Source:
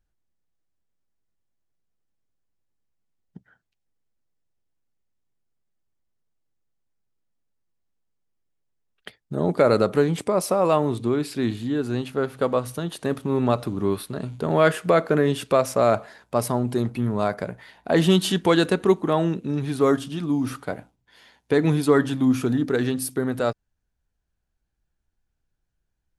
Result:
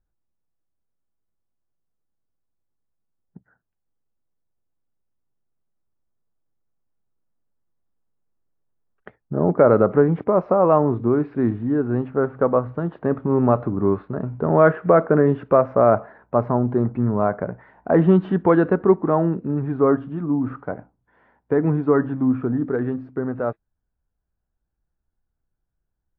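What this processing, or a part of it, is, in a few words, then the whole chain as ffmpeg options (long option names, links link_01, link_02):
action camera in a waterproof case: -af "lowpass=frequency=1500:width=0.5412,lowpass=frequency=1500:width=1.3066,dynaudnorm=framelen=420:gausssize=31:maxgain=16dB,volume=-1dB" -ar 16000 -c:a aac -b:a 48k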